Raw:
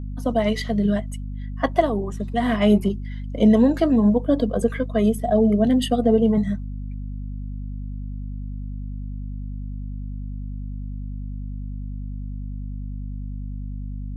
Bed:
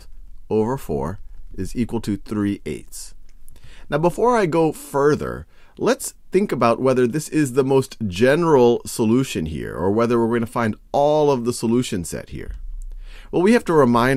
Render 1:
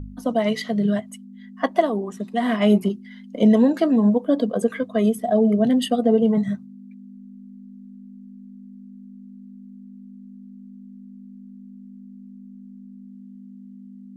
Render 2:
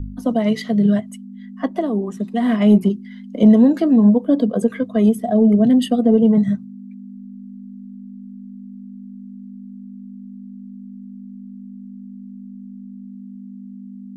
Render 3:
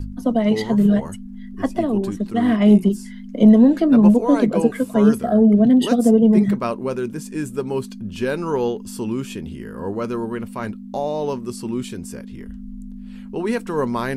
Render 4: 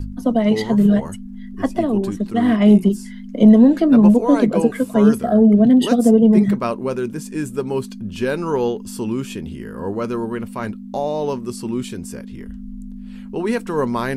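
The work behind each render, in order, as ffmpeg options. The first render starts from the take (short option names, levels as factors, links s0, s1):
-af "bandreject=f=50:t=h:w=4,bandreject=f=100:t=h:w=4,bandreject=f=150:t=h:w=4"
-filter_complex "[0:a]acrossover=split=370[s0][s1];[s0]acontrast=66[s2];[s1]alimiter=limit=0.158:level=0:latency=1:release=273[s3];[s2][s3]amix=inputs=2:normalize=0"
-filter_complex "[1:a]volume=0.422[s0];[0:a][s0]amix=inputs=2:normalize=0"
-af "volume=1.19,alimiter=limit=0.708:level=0:latency=1"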